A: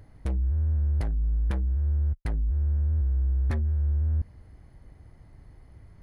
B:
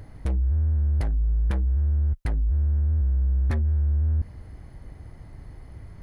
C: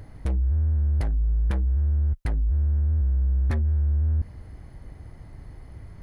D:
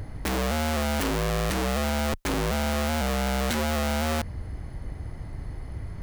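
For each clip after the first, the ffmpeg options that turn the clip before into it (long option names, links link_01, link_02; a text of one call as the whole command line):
ffmpeg -i in.wav -af "alimiter=level_in=2.5dB:limit=-24dB:level=0:latency=1:release=13,volume=-2.5dB,volume=8dB" out.wav
ffmpeg -i in.wav -af anull out.wav
ffmpeg -i in.wav -af "aeval=exprs='(mod(23.7*val(0)+1,2)-1)/23.7':channel_layout=same,volume=6.5dB" out.wav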